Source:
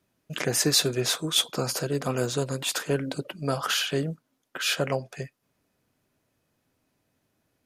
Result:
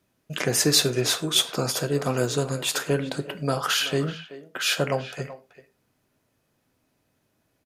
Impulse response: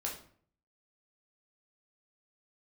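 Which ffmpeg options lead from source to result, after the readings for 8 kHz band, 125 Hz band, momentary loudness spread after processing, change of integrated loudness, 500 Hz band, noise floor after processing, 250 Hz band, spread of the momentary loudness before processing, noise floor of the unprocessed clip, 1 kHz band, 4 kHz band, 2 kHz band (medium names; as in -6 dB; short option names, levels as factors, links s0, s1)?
+2.5 dB, +2.5 dB, 15 LU, +2.5 dB, +2.5 dB, -72 dBFS, +2.5 dB, 16 LU, -75 dBFS, +2.5 dB, +2.5 dB, +2.5 dB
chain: -filter_complex "[0:a]asplit=2[s0][s1];[s1]adelay=380,highpass=300,lowpass=3400,asoftclip=type=hard:threshold=0.126,volume=0.2[s2];[s0][s2]amix=inputs=2:normalize=0,asplit=2[s3][s4];[1:a]atrim=start_sample=2205,afade=t=out:st=0.17:d=0.01,atrim=end_sample=7938[s5];[s4][s5]afir=irnorm=-1:irlink=0,volume=0.376[s6];[s3][s6]amix=inputs=2:normalize=0"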